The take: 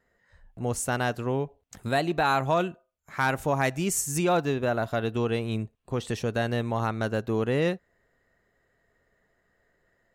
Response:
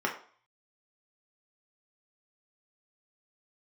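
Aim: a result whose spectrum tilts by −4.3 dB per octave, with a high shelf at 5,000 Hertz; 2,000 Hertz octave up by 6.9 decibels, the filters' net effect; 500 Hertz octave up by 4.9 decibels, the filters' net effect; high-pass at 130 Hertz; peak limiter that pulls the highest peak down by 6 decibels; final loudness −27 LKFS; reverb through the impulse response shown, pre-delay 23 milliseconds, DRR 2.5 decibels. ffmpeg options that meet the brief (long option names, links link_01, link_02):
-filter_complex "[0:a]highpass=130,equalizer=frequency=500:width_type=o:gain=5.5,equalizer=frequency=2000:width_type=o:gain=8.5,highshelf=frequency=5000:gain=4.5,alimiter=limit=-12dB:level=0:latency=1,asplit=2[link_01][link_02];[1:a]atrim=start_sample=2205,adelay=23[link_03];[link_02][link_03]afir=irnorm=-1:irlink=0,volume=-11.5dB[link_04];[link_01][link_04]amix=inputs=2:normalize=0,volume=-3.5dB"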